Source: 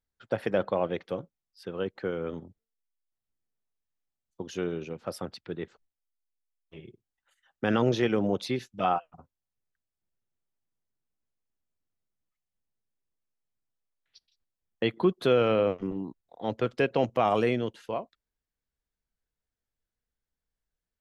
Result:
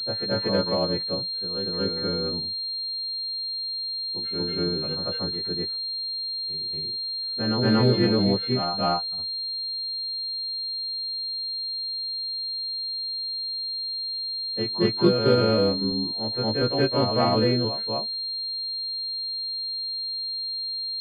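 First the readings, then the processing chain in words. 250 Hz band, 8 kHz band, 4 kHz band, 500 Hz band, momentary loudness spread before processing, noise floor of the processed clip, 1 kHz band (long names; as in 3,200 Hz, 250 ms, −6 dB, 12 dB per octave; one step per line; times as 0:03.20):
+6.0 dB, can't be measured, +21.5 dB, +3.0 dB, 14 LU, −31 dBFS, +2.0 dB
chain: every partial snapped to a pitch grid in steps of 2 semitones
low-shelf EQ 330 Hz +9.5 dB
backwards echo 234 ms −5 dB
switching amplifier with a slow clock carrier 4,200 Hz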